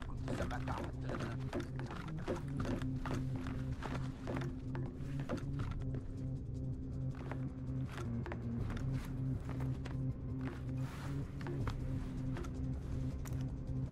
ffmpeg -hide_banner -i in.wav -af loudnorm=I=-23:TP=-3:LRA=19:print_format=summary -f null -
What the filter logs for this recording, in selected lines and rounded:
Input Integrated:    -41.8 LUFS
Input True Peak:     -25.3 dBTP
Input LRA:             1.1 LU
Input Threshold:     -51.8 LUFS